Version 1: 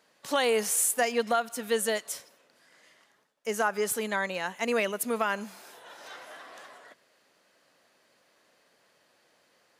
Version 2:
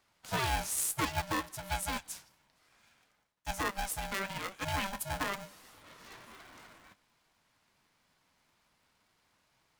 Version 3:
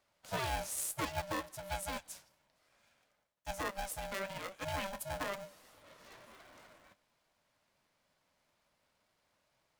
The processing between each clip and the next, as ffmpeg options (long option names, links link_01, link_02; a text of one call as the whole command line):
ffmpeg -i in.wav -af "flanger=delay=2.6:depth=9.2:regen=70:speed=1.1:shape=sinusoidal,aeval=exprs='val(0)*sgn(sin(2*PI*390*n/s))':channel_layout=same,volume=-2.5dB" out.wav
ffmpeg -i in.wav -af "equalizer=frequency=580:width=3.5:gain=9,volume=-5.5dB" out.wav